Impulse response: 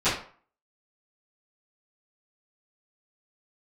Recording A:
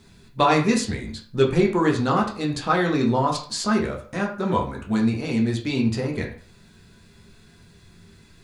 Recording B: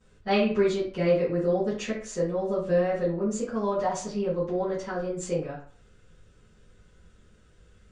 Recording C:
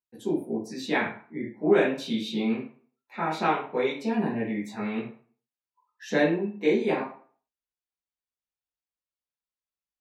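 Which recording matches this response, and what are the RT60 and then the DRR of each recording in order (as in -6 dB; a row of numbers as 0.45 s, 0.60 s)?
B; 0.45 s, 0.45 s, 0.45 s; -0.5 dB, -18.5 dB, -9.0 dB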